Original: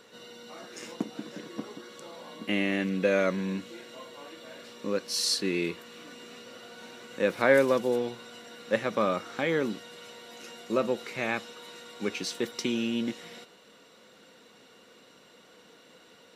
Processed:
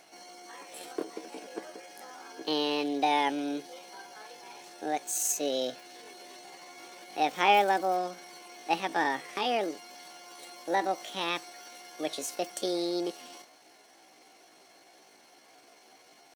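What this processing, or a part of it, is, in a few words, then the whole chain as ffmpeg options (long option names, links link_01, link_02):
chipmunk voice: -af "asetrate=66075,aresample=44100,atempo=0.66742,volume=-1.5dB"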